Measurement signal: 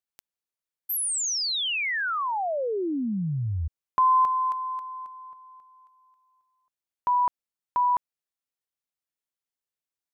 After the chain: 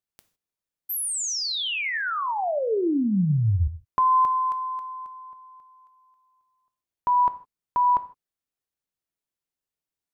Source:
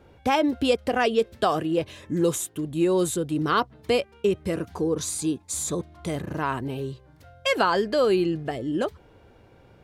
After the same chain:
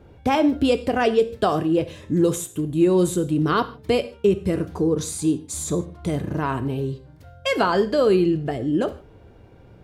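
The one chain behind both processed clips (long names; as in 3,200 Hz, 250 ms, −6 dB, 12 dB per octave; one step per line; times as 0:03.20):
low-shelf EQ 460 Hz +8 dB
reverb whose tail is shaped and stops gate 180 ms falling, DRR 10.5 dB
level −1 dB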